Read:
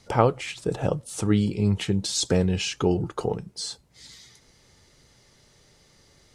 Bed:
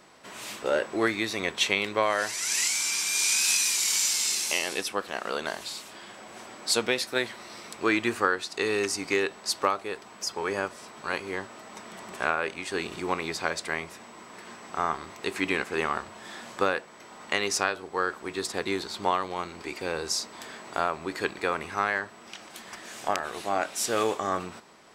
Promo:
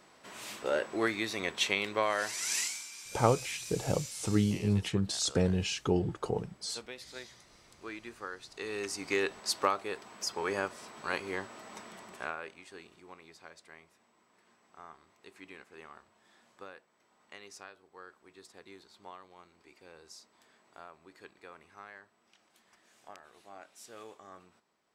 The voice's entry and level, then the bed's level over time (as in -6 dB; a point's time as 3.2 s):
3.05 s, -6.0 dB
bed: 2.58 s -5 dB
2.89 s -19 dB
8.16 s -19 dB
9.25 s -3.5 dB
11.77 s -3.5 dB
13.02 s -23 dB